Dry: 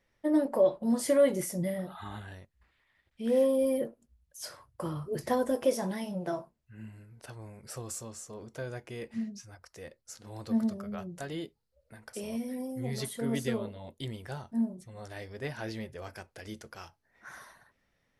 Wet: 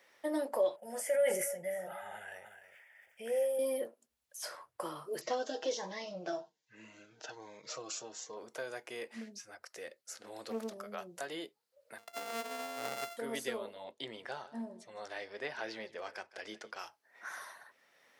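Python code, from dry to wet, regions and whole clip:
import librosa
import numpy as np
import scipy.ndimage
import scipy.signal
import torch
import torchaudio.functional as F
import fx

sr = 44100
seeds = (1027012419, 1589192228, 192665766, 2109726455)

y = fx.chain(x, sr, fx.fixed_phaser(hz=1100.0, stages=6),
    fx.echo_single(ms=296, db=-17.5),
    fx.sustainer(db_per_s=48.0), at=(0.76, 3.59))
y = fx.chain(y, sr, fx.resample_bad(factor=3, down='none', up='filtered'),
    fx.comb(ms=6.4, depth=0.47),
    fx.notch_cascade(direction='rising', hz=1.2), at=(5.21, 8.37))
y = fx.chain(y, sr, fx.peak_eq(hz=970.0, db=-6.5, octaves=0.67),
    fx.doppler_dist(depth_ms=0.5), at=(9.21, 10.76))
y = fx.chain(y, sr, fx.sample_sort(block=64),
    fx.upward_expand(threshold_db=-45.0, expansion=1.5), at=(11.98, 13.17))
y = fx.chain(y, sr, fx.lowpass(hz=5300.0, slope=12),
    fx.echo_single(ms=157, db=-18.5), at=(13.84, 16.79))
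y = scipy.signal.sosfilt(scipy.signal.butter(2, 500.0, 'highpass', fs=sr, output='sos'), y)
y = fx.band_squash(y, sr, depth_pct=40)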